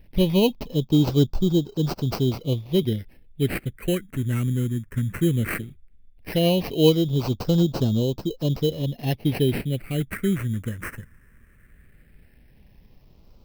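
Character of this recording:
aliases and images of a low sample rate 3,500 Hz, jitter 0%
phaser sweep stages 4, 0.16 Hz, lowest notch 750–1,900 Hz

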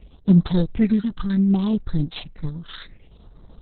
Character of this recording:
a buzz of ramps at a fixed pitch in blocks of 8 samples
tremolo triangle 0.62 Hz, depth 40%
phaser sweep stages 8, 0.66 Hz, lowest notch 680–2,500 Hz
Opus

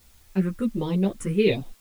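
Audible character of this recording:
phaser sweep stages 4, 1.4 Hz, lowest notch 720–1,500 Hz
a quantiser's noise floor 10 bits, dither triangular
a shimmering, thickened sound

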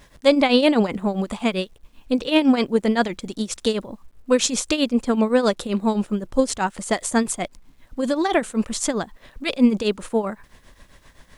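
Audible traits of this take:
tremolo triangle 7.7 Hz, depth 80%
a quantiser's noise floor 12 bits, dither none

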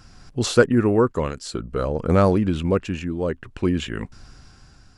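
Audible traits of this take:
tremolo triangle 0.55 Hz, depth 65%

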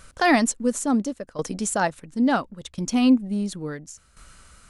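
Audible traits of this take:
tremolo saw down 0.72 Hz, depth 75%

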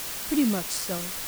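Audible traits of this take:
tremolo saw down 1.6 Hz, depth 45%
a quantiser's noise floor 6 bits, dither triangular

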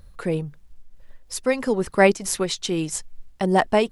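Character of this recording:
a quantiser's noise floor 12 bits, dither none
amplitude modulation by smooth noise

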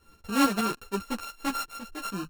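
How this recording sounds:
a buzz of ramps at a fixed pitch in blocks of 32 samples
tremolo saw up 6.7 Hz, depth 60%
a shimmering, thickened sound

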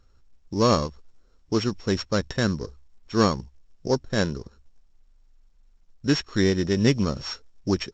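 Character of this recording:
a buzz of ramps at a fixed pitch in blocks of 8 samples
mu-law

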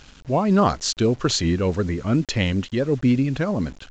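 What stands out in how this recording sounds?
a quantiser's noise floor 8 bits, dither none
mu-law

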